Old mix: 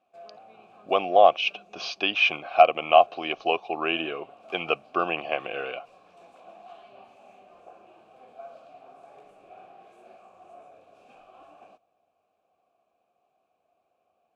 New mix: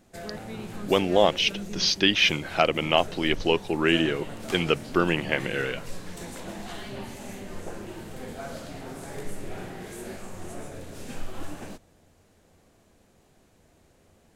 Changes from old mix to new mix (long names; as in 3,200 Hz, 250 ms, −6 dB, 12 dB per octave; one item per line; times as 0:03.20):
speech −11.5 dB
master: remove formant filter a